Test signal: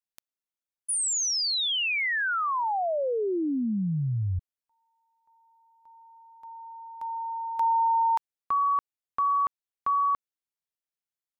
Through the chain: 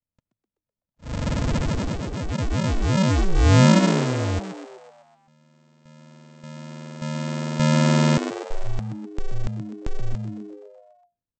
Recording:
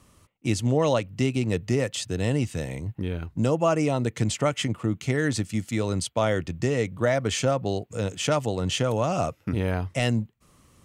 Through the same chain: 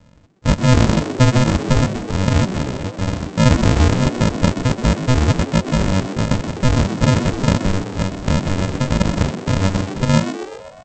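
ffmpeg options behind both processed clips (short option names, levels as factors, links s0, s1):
-filter_complex "[0:a]acrossover=split=6300[s0][s1];[s1]acompressor=threshold=0.00891:ratio=4:attack=1:release=60[s2];[s0][s2]amix=inputs=2:normalize=0,equalizer=f=125:t=o:w=1:g=-6,equalizer=f=250:t=o:w=1:g=9,equalizer=f=2000:t=o:w=1:g=-10,aresample=16000,acrusher=samples=42:mix=1:aa=0.000001,aresample=44100,asplit=8[s3][s4][s5][s6][s7][s8][s9][s10];[s4]adelay=126,afreqshift=100,volume=0.282[s11];[s5]adelay=252,afreqshift=200,volume=0.166[s12];[s6]adelay=378,afreqshift=300,volume=0.0977[s13];[s7]adelay=504,afreqshift=400,volume=0.0582[s14];[s8]adelay=630,afreqshift=500,volume=0.0343[s15];[s9]adelay=756,afreqshift=600,volume=0.0202[s16];[s10]adelay=882,afreqshift=700,volume=0.0119[s17];[s3][s11][s12][s13][s14][s15][s16][s17]amix=inputs=8:normalize=0,volume=2.11"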